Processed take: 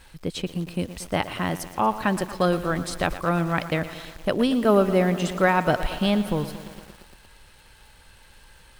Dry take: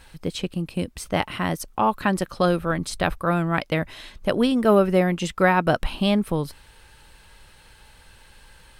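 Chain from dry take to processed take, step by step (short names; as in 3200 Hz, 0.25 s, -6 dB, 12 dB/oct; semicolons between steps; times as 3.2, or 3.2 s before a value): crackle 270/s -45 dBFS; lo-fi delay 0.116 s, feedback 80%, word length 6-bit, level -13.5 dB; gain -1.5 dB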